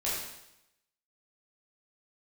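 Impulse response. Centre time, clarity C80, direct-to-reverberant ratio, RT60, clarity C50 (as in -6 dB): 68 ms, 3.0 dB, -8.5 dB, 0.85 s, 0.0 dB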